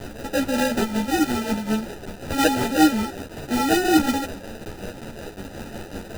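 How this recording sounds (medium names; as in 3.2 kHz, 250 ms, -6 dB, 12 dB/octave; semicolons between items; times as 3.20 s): a quantiser's noise floor 6-bit, dither triangular; tremolo triangle 5.4 Hz, depth 65%; aliases and images of a low sample rate 1.1 kHz, jitter 0%; a shimmering, thickened sound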